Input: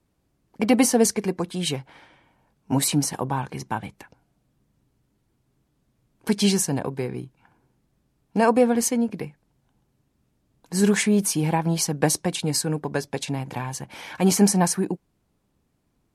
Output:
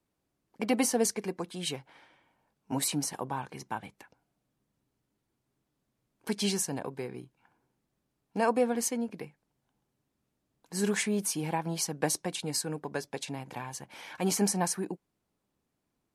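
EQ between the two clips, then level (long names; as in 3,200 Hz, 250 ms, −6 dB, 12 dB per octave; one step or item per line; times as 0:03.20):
low-shelf EQ 170 Hz −10 dB
−7.0 dB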